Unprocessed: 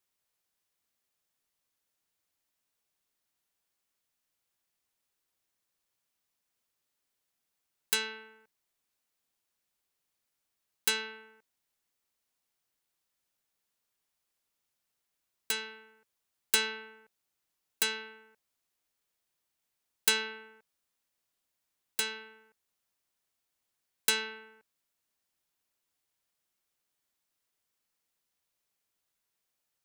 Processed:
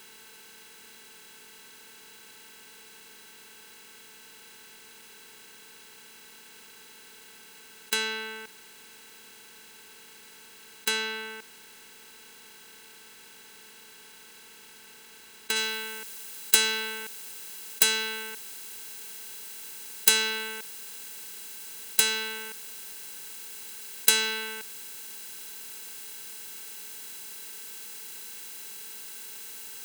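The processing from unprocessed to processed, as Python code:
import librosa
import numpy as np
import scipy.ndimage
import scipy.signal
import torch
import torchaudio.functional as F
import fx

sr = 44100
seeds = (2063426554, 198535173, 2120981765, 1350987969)

y = fx.bin_compress(x, sr, power=0.4)
y = fx.high_shelf(y, sr, hz=4900.0, db=fx.steps((0.0, -6.0), (15.55, 6.5)))
y = y * librosa.db_to_amplitude(1.0)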